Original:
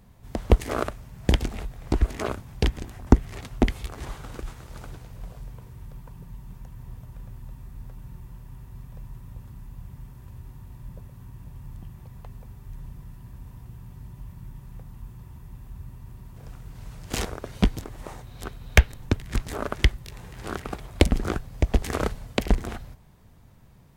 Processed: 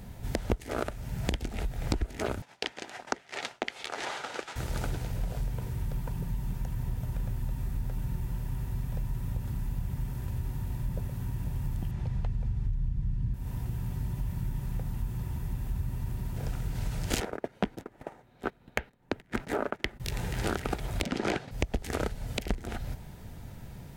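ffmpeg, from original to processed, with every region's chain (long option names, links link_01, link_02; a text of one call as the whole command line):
ffmpeg -i in.wav -filter_complex "[0:a]asettb=1/sr,asplit=3[link_01][link_02][link_03];[link_01]atrim=end=2.424[link_04];[link_02]atrim=start=2.42:end=4.56,asetpts=PTS-STARTPTS,afade=type=in:duration=0.004:curve=qsin,afade=type=out:start_time=2.136:duration=0.004:curve=qsin,acompressor=mode=upward:threshold=-33dB:ratio=2.5:attack=3.2:release=140:knee=2.83:detection=peak,highpass=600,lowpass=6000,agate=range=-33dB:threshold=-47dB:ratio=3:release=100:detection=peak[link_05];[link_03]atrim=start=4.556[link_06];[link_04][link_05]acrossfade=duration=0.004:curve1=hsin:curve2=qsin[link_07];[link_07][link_06]acrossfade=duration=0.004:curve1=qsin:curve2=hsin,asettb=1/sr,asplit=3[link_08][link_09][link_10];[link_08]atrim=end=11.914[link_11];[link_09]atrim=start=11.91:end=13.34,asetpts=PTS-STARTPTS,afade=type=in:duration=0.004:curve=qsin,afade=type=out:start_time=1.426:duration=0.004:curve=qsin,lowpass=5800,asubboost=boost=12:cutoff=230[link_12];[link_10]atrim=start=13.336[link_13];[link_11][link_12]acrossfade=duration=0.004:curve1=hsin:curve2=qsin[link_14];[link_14][link_13]acrossfade=duration=0.004:curve1=qsin:curve2=hsin,asettb=1/sr,asplit=3[link_15][link_16][link_17];[link_15]atrim=end=17.204[link_18];[link_16]atrim=start=17.2:end=20,asetpts=PTS-STARTPTS,afade=type=in:duration=0.004:curve=qsin,afade=type=out:start_time=2.796:duration=0.004:curve=qsin,agate=range=-18dB:threshold=-36dB:ratio=16:release=100:detection=peak,acrossover=split=180 2400:gain=0.126 1 0.224[link_19][link_20][link_21];[link_19][link_20][link_21]amix=inputs=3:normalize=0[link_22];[link_17]atrim=start=19.996[link_23];[link_18][link_22]acrossfade=duration=0.004:curve1=hsin:curve2=qsin[link_24];[link_24][link_23]acrossfade=duration=0.004:curve1=qsin:curve2=hsin,asettb=1/sr,asplit=3[link_25][link_26][link_27];[link_25]atrim=end=21.034[link_28];[link_26]atrim=start=21.03:end=21.51,asetpts=PTS-STARTPTS,afade=type=in:duration=0.004:curve=qsin,afade=type=out:start_time=0.476:duration=0.004:curve=qsin,agate=range=-33dB:threshold=-36dB:ratio=3:release=100:detection=peak,highpass=260,lowpass=4800,aeval=exprs='0.237*sin(PI/2*3.55*val(0)/0.237)':channel_layout=same[link_29];[link_27]atrim=start=21.506[link_30];[link_28][link_29]acrossfade=duration=0.004:curve1=hsin:curve2=qsin[link_31];[link_31][link_30]acrossfade=duration=0.004:curve1=qsin:curve2=hsin,bandreject=frequency=1100:width=5.2,acompressor=threshold=-36dB:ratio=10,alimiter=level_in=18.5dB:limit=-1dB:release=50:level=0:latency=1,volume=-9dB" out.wav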